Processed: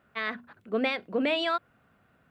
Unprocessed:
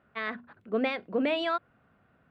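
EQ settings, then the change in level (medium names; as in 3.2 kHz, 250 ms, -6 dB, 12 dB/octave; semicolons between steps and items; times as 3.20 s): treble shelf 3.2 kHz +9 dB; 0.0 dB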